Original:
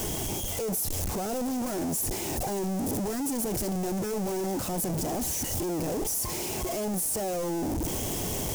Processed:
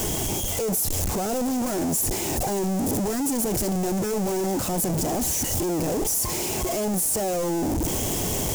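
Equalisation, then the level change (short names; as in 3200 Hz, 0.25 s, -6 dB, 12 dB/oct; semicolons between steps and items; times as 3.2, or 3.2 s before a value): bell 7200 Hz +3 dB 0.22 oct; +5.0 dB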